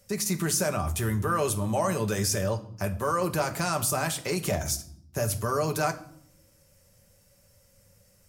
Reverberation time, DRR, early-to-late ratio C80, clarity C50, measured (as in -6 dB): not exponential, 5.0 dB, 18.5 dB, 15.0 dB